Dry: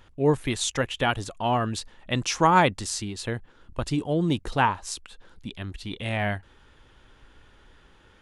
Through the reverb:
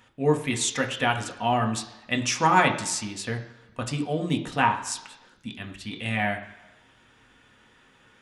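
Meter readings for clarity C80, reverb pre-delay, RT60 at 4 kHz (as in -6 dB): 13.0 dB, 3 ms, 0.95 s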